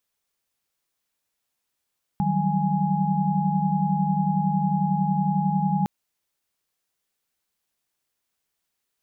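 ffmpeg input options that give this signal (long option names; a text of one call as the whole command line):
ffmpeg -f lavfi -i "aevalsrc='0.0531*(sin(2*PI*155.56*t)+sin(2*PI*185*t)+sin(2*PI*196*t)+sin(2*PI*830.61*t))':duration=3.66:sample_rate=44100" out.wav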